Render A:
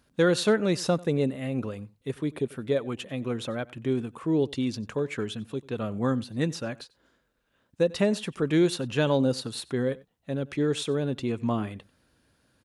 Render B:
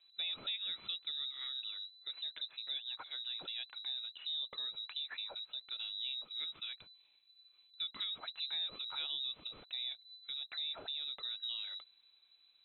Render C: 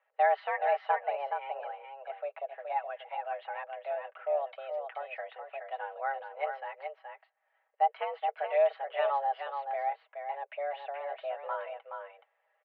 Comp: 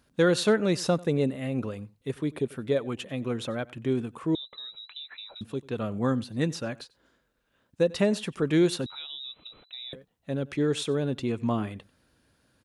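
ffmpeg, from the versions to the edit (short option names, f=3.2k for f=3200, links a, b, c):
-filter_complex "[1:a]asplit=2[a][b];[0:a]asplit=3[c][d][e];[c]atrim=end=4.352[f];[a]atrim=start=4.348:end=5.412[g];[d]atrim=start=5.408:end=8.862[h];[b]atrim=start=8.858:end=9.932[i];[e]atrim=start=9.928[j];[f][g]acrossfade=d=0.004:c1=hsin:c2=hsin[k];[k][h]acrossfade=d=0.004:c1=hsin:c2=hsin[l];[l][i]acrossfade=d=0.004:c1=hsin:c2=hsin[m];[m][j]acrossfade=d=0.004:c1=hsin:c2=hsin"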